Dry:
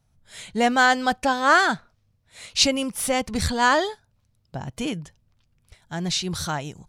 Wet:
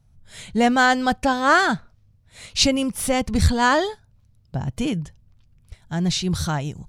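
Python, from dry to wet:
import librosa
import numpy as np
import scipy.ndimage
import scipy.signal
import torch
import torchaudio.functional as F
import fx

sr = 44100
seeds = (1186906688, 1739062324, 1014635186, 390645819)

y = fx.low_shelf(x, sr, hz=210.0, db=11.5)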